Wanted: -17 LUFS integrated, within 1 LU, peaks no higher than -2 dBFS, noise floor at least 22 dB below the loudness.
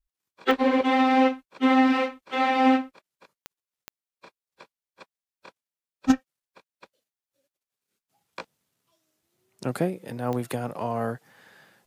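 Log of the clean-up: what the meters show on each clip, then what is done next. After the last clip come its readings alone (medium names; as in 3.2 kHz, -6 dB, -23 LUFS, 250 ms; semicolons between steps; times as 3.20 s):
clicks found 4; loudness -24.5 LUFS; peak level -4.5 dBFS; loudness target -17.0 LUFS
-> de-click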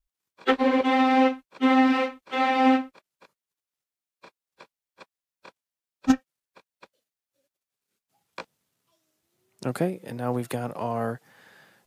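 clicks found 0; loudness -24.5 LUFS; peak level -4.5 dBFS; loudness target -17.0 LUFS
-> trim +7.5 dB; peak limiter -2 dBFS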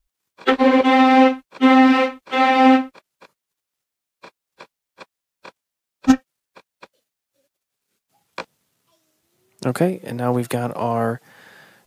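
loudness -17.0 LUFS; peak level -2.0 dBFS; noise floor -84 dBFS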